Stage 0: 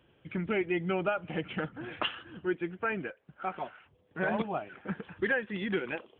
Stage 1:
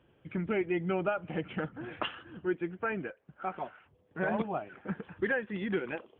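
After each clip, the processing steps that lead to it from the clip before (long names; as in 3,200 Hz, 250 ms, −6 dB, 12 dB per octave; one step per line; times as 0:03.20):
high-shelf EQ 3,400 Hz −12 dB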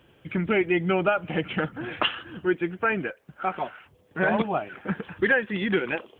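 high-shelf EQ 2,300 Hz +9.5 dB
level +7 dB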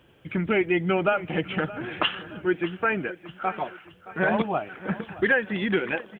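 repeating echo 620 ms, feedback 42%, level −17 dB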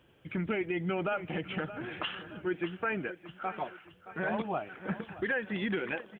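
brickwall limiter −16.5 dBFS, peak gain reduction 7.5 dB
level −6 dB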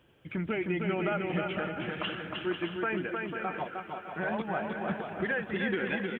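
bouncing-ball delay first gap 310 ms, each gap 0.6×, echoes 5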